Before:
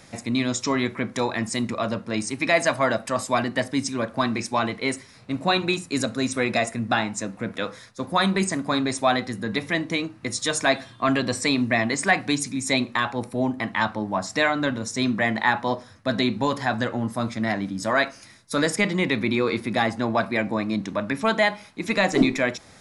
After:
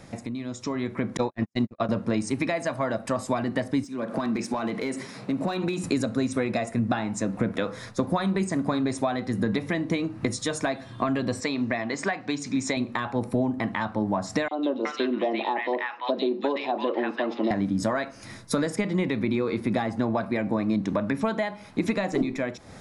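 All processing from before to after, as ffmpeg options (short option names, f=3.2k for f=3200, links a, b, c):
-filter_complex "[0:a]asettb=1/sr,asplit=3[a][b][c];[a]atrim=end=1.174[d];[b]atrim=start=1.17:end=1.89,asetpts=PTS-STARTPTS,afade=t=in:d=0.004:c=qsin,afade=t=out:st=0.716:d=0.004:c=qsin,lowpass=f=6.8k:w=0.5412,lowpass=f=6.8k:w=1.3066,agate=range=-60dB:threshold=-25dB:ratio=16:release=100:detection=peak[e];[c]atrim=start=1.886[f];[d][e]acrossfade=d=0.004:c1=hsin:c2=qsin[g];[g][f]acrossfade=d=0.004:c1=qsin:c2=hsin,asettb=1/sr,asplit=3[h][i][j];[h]atrim=end=3.844[k];[i]atrim=start=3.84:end=5.84,asetpts=PTS-STARTPTS,afade=t=in:d=0.004:c=qsin,afade=t=out:st=1.996:d=0.004:c=qsin,highpass=f=150:w=0.5412,highpass=f=150:w=1.3066,acompressor=threshold=-38dB:ratio=5:attack=3.2:release=140:knee=1:detection=peak,volume=32.5dB,asoftclip=hard,volume=-32.5dB[l];[j]atrim=start=5.836[m];[k][l]acrossfade=d=0.004:c1=hsin:c2=qsin[n];[n][m]acrossfade=d=0.004:c1=qsin:c2=hsin,asettb=1/sr,asplit=3[o][p][q];[o]atrim=end=11.404[r];[p]atrim=start=11.4:end=12.77,asetpts=PTS-STARTPTS,afade=t=in:d=0.004:c=qsin,afade=t=out:st=1.366:d=0.004:c=qsin,lowpass=f=6.9k:w=0.5412,lowpass=f=6.9k:w=1.3066,lowshelf=f=270:g=-11[s];[q]atrim=start=12.766[t];[r][s]acrossfade=d=0.004:c1=hsin:c2=qsin[u];[u][t]acrossfade=d=0.004:c1=qsin:c2=hsin,asettb=1/sr,asplit=3[v][w][x];[v]atrim=end=14.484[y];[w]atrim=start=14.48:end=17.51,asetpts=PTS-STARTPTS,afade=t=in:d=0.004:c=qsin,afade=t=out:st=3.026:d=0.004:c=qsin,highpass=f=320:w=0.5412,highpass=f=320:w=1.3066,equalizer=f=350:t=q:w=4:g=6,equalizer=f=1.5k:t=q:w=4:g=-6,equalizer=f=2.8k:t=q:w=4:g=8,lowpass=f=4.5k:w=0.5412,lowpass=f=4.5k:w=1.3066,acrossover=split=1100|3300[z][aa][ab];[z]adelay=30[ac];[aa]adelay=370[ad];[ac][ad][ab]amix=inputs=3:normalize=0,atrim=end_sample=133623[ae];[x]atrim=start=17.506[af];[y][ae]acrossfade=d=0.004:c1=hsin:c2=qsin[ag];[ag][af]acrossfade=d=0.004:c1=qsin:c2=hsin,acompressor=threshold=-35dB:ratio=16,tiltshelf=f=1.2k:g=5,dynaudnorm=f=300:g=5:m=10dB"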